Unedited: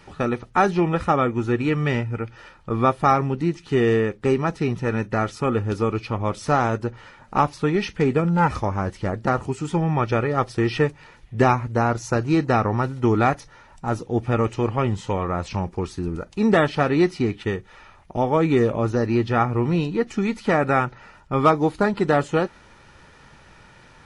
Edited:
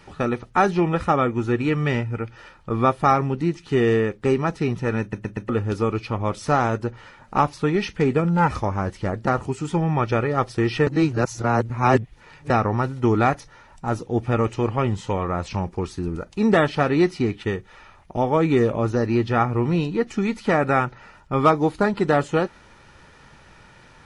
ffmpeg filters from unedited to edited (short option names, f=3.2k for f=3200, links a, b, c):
-filter_complex "[0:a]asplit=7[a][b][c][d][e][f][g];[a]atrim=end=5.132[h];[b]atrim=start=5.008:end=5.132[i];[c]atrim=start=5.008:end=5.132[j];[d]atrim=start=5.008:end=5.132[k];[e]atrim=start=5.488:end=10.872[l];[f]atrim=start=10.868:end=12.502,asetpts=PTS-STARTPTS,areverse[m];[g]atrim=start=12.498[n];[h][i]acrossfade=d=0.004:c1=hsin:c2=hsin[o];[o][j]acrossfade=d=0.004:c1=hsin:c2=hsin[p];[p][k]acrossfade=d=0.004:c1=hsin:c2=hsin[q];[q][l]acrossfade=d=0.004:c1=hsin:c2=hsin[r];[r][m]acrossfade=d=0.004:c1=hsin:c2=hsin[s];[s][n]acrossfade=d=0.004:c1=hsin:c2=hsin"